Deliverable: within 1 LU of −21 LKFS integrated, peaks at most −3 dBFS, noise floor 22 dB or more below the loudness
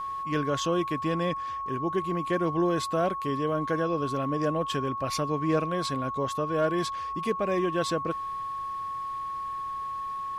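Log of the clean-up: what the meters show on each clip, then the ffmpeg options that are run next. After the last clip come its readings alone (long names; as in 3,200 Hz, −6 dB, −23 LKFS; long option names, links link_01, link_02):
interfering tone 1,100 Hz; level of the tone −31 dBFS; integrated loudness −29.0 LKFS; sample peak −15.5 dBFS; target loudness −21.0 LKFS
→ -af "bandreject=frequency=1100:width=30"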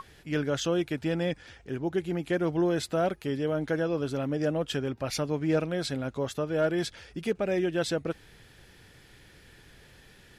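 interfering tone none found; integrated loudness −30.0 LKFS; sample peak −17.0 dBFS; target loudness −21.0 LKFS
→ -af "volume=9dB"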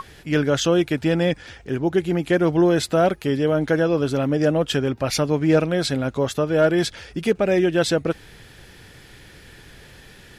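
integrated loudness −21.0 LKFS; sample peak −8.0 dBFS; background noise floor −47 dBFS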